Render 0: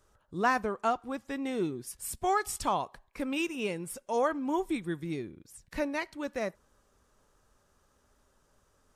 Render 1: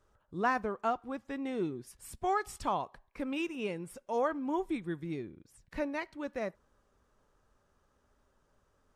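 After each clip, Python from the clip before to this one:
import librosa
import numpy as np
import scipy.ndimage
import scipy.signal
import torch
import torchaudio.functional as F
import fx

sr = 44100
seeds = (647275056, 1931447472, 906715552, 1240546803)

y = fx.high_shelf(x, sr, hz=4800.0, db=-11.0)
y = F.gain(torch.from_numpy(y), -2.5).numpy()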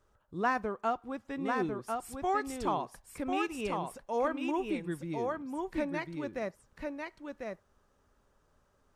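y = x + 10.0 ** (-4.0 / 20.0) * np.pad(x, (int(1047 * sr / 1000.0), 0))[:len(x)]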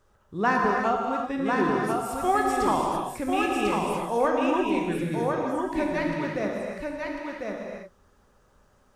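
y = fx.rev_gated(x, sr, seeds[0], gate_ms=360, shape='flat', drr_db=-0.5)
y = F.gain(torch.from_numpy(y), 5.5).numpy()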